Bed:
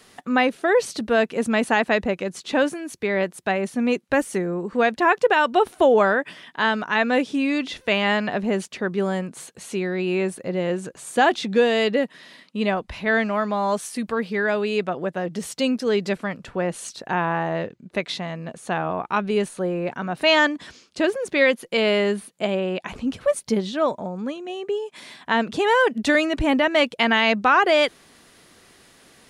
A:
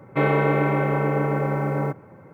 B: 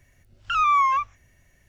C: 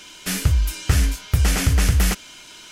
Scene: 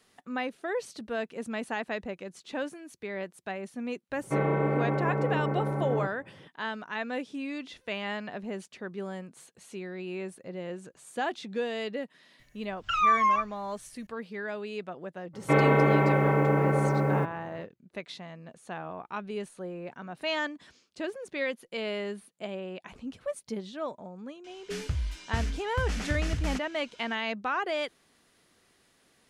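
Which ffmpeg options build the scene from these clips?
-filter_complex "[1:a]asplit=2[a][b];[0:a]volume=-13.5dB[c];[a]highshelf=f=2.1k:g=-11[d];[2:a]aecho=1:1:6.7:0.76[e];[3:a]lowpass=5.9k[f];[d]atrim=end=2.33,asetpts=PTS-STARTPTS,volume=-6dB,afade=t=in:d=0.004:c=hsin,afade=t=out:st=2.326:d=0.004:c=hsin,adelay=4150[g];[e]atrim=end=1.68,asetpts=PTS-STARTPTS,volume=-5.5dB,afade=t=in:d=0.004:c=hsin,afade=t=out:st=1.676:d=0.004:c=hsin,adelay=12390[h];[b]atrim=end=2.33,asetpts=PTS-STARTPTS,volume=-1.5dB,afade=t=in:d=0.02,afade=t=out:st=2.31:d=0.02,adelay=15330[i];[f]atrim=end=2.71,asetpts=PTS-STARTPTS,volume=-13dB,afade=t=in:d=0.004:c=hsin,afade=t=out:st=2.706:d=0.004:c=hsin,adelay=24440[j];[c][g][h][i][j]amix=inputs=5:normalize=0"

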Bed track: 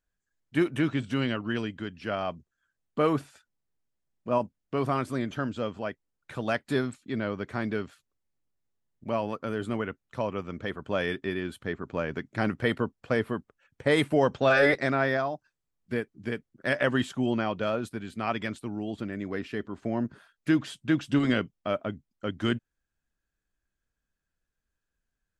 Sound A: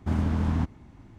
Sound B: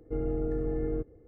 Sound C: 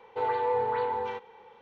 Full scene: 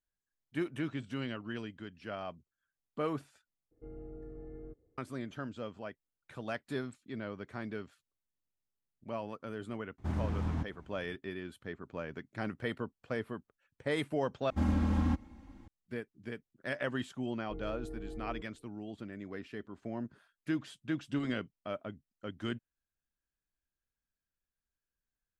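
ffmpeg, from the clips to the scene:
-filter_complex "[2:a]asplit=2[a][b];[1:a]asplit=2[c][d];[0:a]volume=-10dB[e];[c]bandreject=f=230:w=7.5[f];[d]aecho=1:1:3.7:0.96[g];[b]aecho=1:1:2.7:0.59[h];[e]asplit=3[i][j][k];[i]atrim=end=3.714[l];[a]atrim=end=1.27,asetpts=PTS-STARTPTS,volume=-16.5dB[m];[j]atrim=start=4.976:end=14.504[n];[g]atrim=end=1.18,asetpts=PTS-STARTPTS,volume=-6dB[o];[k]atrim=start=15.676[p];[f]atrim=end=1.18,asetpts=PTS-STARTPTS,volume=-8dB,afade=t=in:d=0.004:c=hsin,afade=t=out:st=1.176:d=0.004:c=hsin,adelay=9980[q];[h]atrim=end=1.27,asetpts=PTS-STARTPTS,volume=-15dB,afade=t=in:d=0.004:c=hsin,afade=t=out:st=1.266:d=0.004:c=hsin,adelay=17390[r];[l][m]acrossfade=d=0.004:c1=hsin:c2=hsin[s];[s][n]acrossfade=d=0.004:c1=hsin:c2=hsin[t];[t][o]acrossfade=d=0.004:c1=hsin:c2=hsin[u];[u][p]acrossfade=d=0.004:c1=hsin:c2=hsin[v];[v][q][r]amix=inputs=3:normalize=0"

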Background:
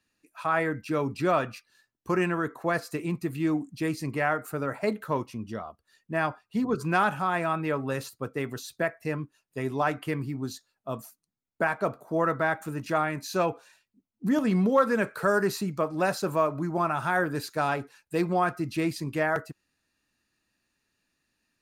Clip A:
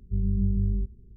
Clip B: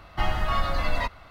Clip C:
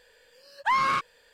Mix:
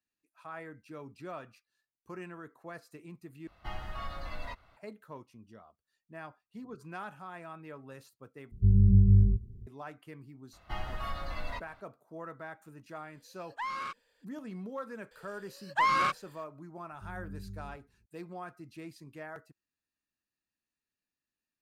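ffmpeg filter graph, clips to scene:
-filter_complex "[2:a]asplit=2[a][b];[1:a]asplit=2[c][d];[3:a]asplit=2[e][f];[0:a]volume=-18dB[g];[c]equalizer=f=110:t=o:w=0.77:g=10[h];[e]equalizer=f=130:t=o:w=0.72:g=-6[i];[d]highpass=57[j];[g]asplit=3[k][l][m];[k]atrim=end=3.474[n];[a]atrim=end=1.3,asetpts=PTS-STARTPTS,volume=-14.5dB[o];[l]atrim=start=4.766:end=8.514[p];[h]atrim=end=1.16,asetpts=PTS-STARTPTS,volume=-0.5dB[q];[m]atrim=start=9.666[r];[b]atrim=end=1.3,asetpts=PTS-STARTPTS,volume=-12dB,afade=t=in:d=0.02,afade=t=out:st=1.28:d=0.02,adelay=10520[s];[i]atrim=end=1.33,asetpts=PTS-STARTPTS,volume=-13dB,afade=t=in:d=0.004:c=hsin,afade=t=out:st=1.326:d=0.004:c=hsin,adelay=12920[t];[f]atrim=end=1.33,asetpts=PTS-STARTPTS,volume=-2.5dB,afade=t=in:d=0.004:c=hsin,afade=t=out:st=1.326:d=0.004:c=hsin,adelay=15110[u];[j]atrim=end=1.16,asetpts=PTS-STARTPTS,volume=-17.5dB,afade=t=in:d=0.004:c=hsin,afade=t=out:st=1.156:d=0.004:c=hsin,adelay=16900[v];[n][o]acrossfade=d=0.004:c1=hsin:c2=hsin[w];[w][p]acrossfade=d=0.004:c1=hsin:c2=hsin[x];[x][q]acrossfade=d=0.004:c1=hsin:c2=hsin[y];[y][r]acrossfade=d=0.004:c1=hsin:c2=hsin[z];[z][s][t][u][v]amix=inputs=5:normalize=0"

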